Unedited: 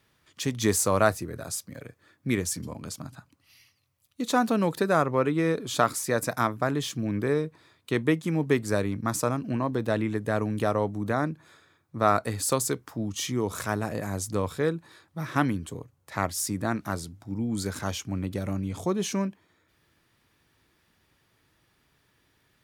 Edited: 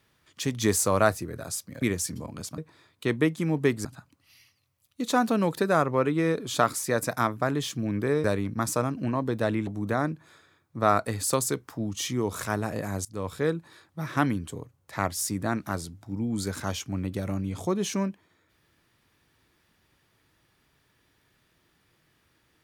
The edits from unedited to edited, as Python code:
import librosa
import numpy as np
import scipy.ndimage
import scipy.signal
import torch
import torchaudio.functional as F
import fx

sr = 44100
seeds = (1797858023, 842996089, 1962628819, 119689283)

y = fx.edit(x, sr, fx.cut(start_s=1.82, length_s=0.47),
    fx.move(start_s=7.44, length_s=1.27, to_s=3.05),
    fx.cut(start_s=10.14, length_s=0.72),
    fx.fade_in_from(start_s=14.24, length_s=0.47, curve='qsin', floor_db=-21.5), tone=tone)